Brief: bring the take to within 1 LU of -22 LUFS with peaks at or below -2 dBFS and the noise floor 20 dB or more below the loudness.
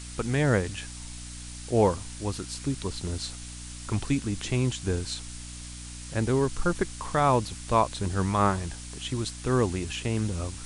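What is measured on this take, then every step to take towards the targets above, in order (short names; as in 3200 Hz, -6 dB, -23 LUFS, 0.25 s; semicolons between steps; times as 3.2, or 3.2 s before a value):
hum 60 Hz; harmonics up to 300 Hz; hum level -41 dBFS; noise floor -41 dBFS; noise floor target -48 dBFS; loudness -28.0 LUFS; peak -9.5 dBFS; loudness target -22.0 LUFS
-> notches 60/120/180/240/300 Hz; noise print and reduce 7 dB; gain +6 dB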